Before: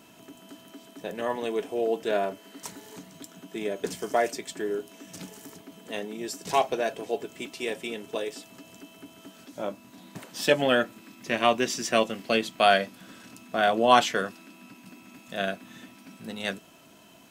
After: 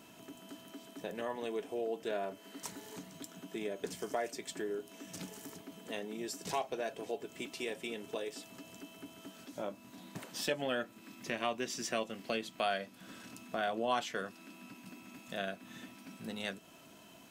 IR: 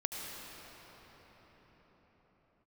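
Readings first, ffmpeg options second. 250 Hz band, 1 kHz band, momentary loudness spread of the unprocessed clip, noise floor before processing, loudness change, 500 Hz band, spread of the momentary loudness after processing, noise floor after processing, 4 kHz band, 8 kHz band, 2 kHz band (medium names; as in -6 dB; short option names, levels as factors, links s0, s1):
-9.5 dB, -13.0 dB, 23 LU, -53 dBFS, -12.5 dB, -11.0 dB, 16 LU, -57 dBFS, -11.0 dB, -7.5 dB, -11.5 dB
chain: -af "acompressor=threshold=0.0158:ratio=2,volume=0.708"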